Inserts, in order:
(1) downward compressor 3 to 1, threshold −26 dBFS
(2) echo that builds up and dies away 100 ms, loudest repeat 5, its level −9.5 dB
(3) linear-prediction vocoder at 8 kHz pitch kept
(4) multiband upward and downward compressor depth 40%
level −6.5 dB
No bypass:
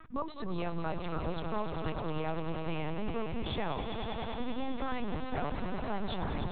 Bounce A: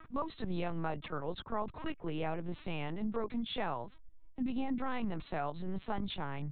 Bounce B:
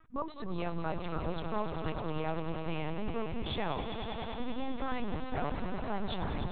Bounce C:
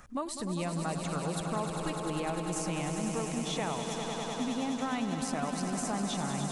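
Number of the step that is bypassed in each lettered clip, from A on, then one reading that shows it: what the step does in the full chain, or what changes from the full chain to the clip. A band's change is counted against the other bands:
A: 2, change in momentary loudness spread +2 LU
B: 4, change in crest factor +1.5 dB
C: 3, 4 kHz band +2.5 dB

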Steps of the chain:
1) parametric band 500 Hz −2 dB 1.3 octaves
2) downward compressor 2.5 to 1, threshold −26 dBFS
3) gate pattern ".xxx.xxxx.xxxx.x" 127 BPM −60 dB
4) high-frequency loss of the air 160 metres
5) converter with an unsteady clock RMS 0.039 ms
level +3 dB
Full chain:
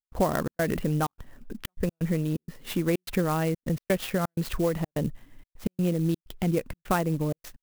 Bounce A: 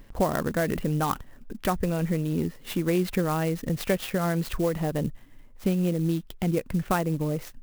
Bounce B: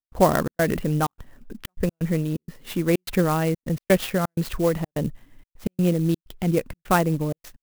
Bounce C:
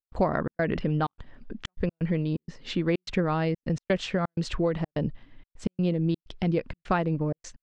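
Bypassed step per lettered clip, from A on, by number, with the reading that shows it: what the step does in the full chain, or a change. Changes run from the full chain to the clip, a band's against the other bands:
3, change in momentary loudness spread −2 LU
2, change in integrated loudness +4.5 LU
5, 8 kHz band −8.0 dB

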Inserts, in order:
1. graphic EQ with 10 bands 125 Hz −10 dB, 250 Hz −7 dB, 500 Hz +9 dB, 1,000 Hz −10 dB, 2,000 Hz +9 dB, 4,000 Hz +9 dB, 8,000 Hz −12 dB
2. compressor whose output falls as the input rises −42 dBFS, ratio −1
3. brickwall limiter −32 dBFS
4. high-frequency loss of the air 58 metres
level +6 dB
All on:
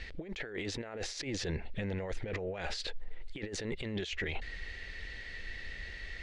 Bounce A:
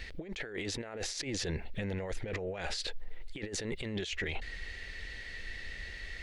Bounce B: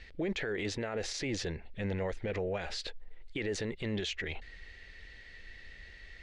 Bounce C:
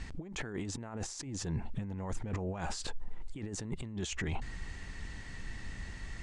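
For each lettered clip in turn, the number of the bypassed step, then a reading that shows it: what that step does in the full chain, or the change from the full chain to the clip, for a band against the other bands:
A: 4, 8 kHz band +4.0 dB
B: 2, change in momentary loudness spread +9 LU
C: 1, change in momentary loudness spread +2 LU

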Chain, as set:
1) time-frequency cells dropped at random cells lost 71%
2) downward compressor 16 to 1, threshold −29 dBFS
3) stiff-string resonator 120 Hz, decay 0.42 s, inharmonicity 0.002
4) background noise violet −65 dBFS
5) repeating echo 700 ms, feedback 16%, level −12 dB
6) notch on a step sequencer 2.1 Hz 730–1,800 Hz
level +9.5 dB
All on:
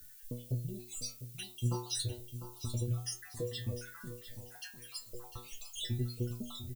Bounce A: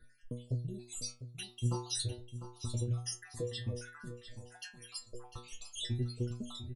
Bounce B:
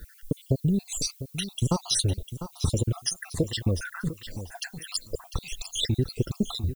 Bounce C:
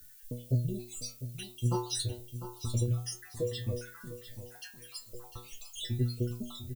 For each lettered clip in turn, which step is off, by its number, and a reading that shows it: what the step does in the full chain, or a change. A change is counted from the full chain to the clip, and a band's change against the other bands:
4, change in momentary loudness spread +2 LU
3, 250 Hz band +3.5 dB
2, average gain reduction 1.5 dB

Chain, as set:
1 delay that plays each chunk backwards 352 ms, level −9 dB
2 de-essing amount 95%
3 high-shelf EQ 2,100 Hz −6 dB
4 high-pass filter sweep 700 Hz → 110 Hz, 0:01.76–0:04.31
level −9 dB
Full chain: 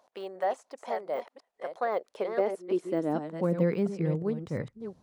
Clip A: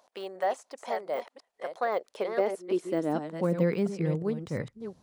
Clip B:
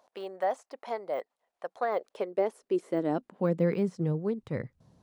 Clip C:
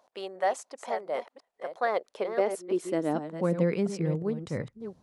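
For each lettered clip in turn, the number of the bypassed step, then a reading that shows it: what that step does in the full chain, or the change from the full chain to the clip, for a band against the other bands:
3, 2 kHz band +2.5 dB
1, change in momentary loudness spread −1 LU
2, change in momentary loudness spread −2 LU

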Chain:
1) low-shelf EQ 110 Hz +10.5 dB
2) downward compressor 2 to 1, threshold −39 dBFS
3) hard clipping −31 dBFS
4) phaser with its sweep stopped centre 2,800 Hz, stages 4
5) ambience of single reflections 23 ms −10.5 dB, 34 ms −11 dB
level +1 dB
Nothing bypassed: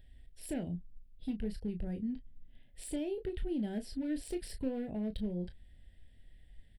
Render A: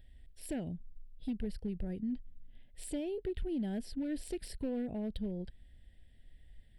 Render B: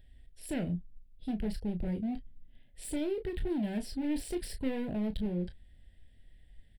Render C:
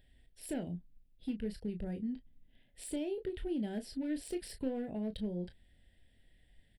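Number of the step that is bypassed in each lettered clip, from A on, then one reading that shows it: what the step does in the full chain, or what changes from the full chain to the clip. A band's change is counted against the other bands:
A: 5, echo-to-direct ratio −7.5 dB to none audible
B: 2, average gain reduction 4.0 dB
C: 1, 125 Hz band −2.5 dB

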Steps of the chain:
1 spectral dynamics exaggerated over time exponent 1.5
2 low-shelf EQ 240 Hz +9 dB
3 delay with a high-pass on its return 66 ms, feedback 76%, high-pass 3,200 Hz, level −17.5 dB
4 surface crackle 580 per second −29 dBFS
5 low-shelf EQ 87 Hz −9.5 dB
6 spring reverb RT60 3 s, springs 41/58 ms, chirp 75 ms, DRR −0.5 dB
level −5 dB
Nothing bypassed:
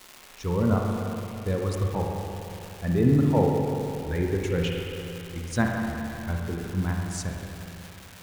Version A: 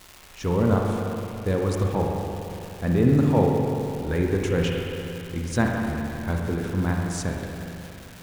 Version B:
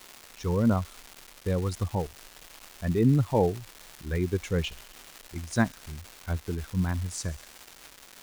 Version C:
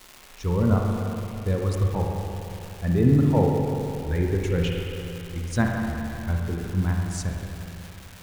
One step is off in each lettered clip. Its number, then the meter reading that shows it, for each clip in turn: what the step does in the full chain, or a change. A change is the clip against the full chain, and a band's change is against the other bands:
1, change in momentary loudness spread −3 LU
6, change in momentary loudness spread +7 LU
5, 125 Hz band +3.5 dB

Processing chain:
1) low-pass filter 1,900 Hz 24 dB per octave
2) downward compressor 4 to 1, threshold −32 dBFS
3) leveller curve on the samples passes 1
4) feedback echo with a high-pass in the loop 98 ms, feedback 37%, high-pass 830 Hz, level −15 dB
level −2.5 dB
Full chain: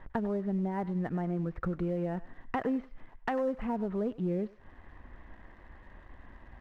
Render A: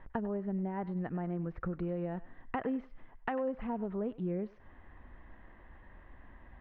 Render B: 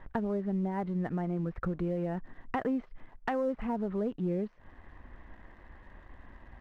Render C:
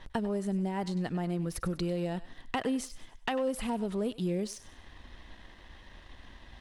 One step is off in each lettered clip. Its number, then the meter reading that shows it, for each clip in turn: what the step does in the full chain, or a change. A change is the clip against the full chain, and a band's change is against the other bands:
3, change in crest factor +3.5 dB
4, echo-to-direct ratio −16.0 dB to none audible
1, 2 kHz band +2.0 dB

